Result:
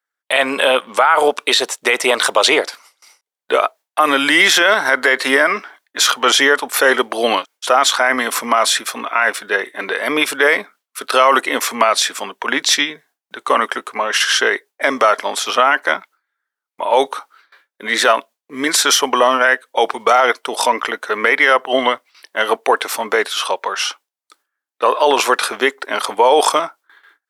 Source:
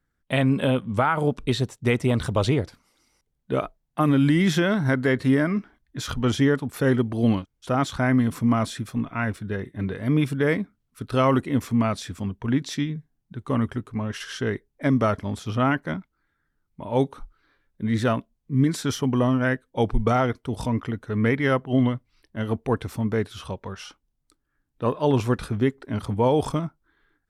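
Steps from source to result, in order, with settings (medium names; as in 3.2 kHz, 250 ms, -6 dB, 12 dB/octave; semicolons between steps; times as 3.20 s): gate with hold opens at -54 dBFS; Bessel high-pass 780 Hz, order 4; loudness maximiser +22 dB; trim -1 dB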